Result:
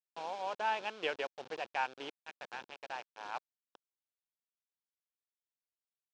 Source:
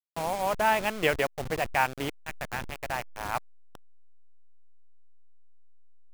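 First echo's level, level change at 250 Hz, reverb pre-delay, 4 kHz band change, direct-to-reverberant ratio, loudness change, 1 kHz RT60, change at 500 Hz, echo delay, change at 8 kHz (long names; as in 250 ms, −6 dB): no echo audible, −16.5 dB, no reverb audible, −7.5 dB, no reverb audible, −10.0 dB, no reverb audible, −11.5 dB, no echo audible, −18.0 dB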